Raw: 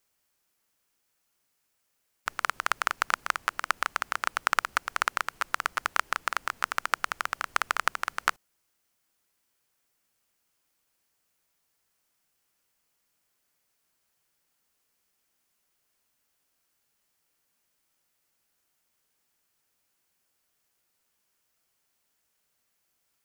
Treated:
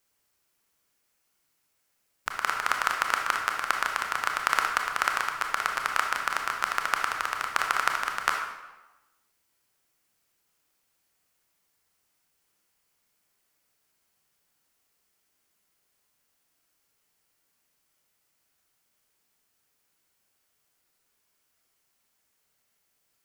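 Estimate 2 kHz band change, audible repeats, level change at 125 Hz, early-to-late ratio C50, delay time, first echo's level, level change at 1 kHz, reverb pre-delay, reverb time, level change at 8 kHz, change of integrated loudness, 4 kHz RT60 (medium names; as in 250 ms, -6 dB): +2.0 dB, no echo, no reading, 4.0 dB, no echo, no echo, +2.5 dB, 24 ms, 1.1 s, +1.5 dB, +2.0 dB, 0.85 s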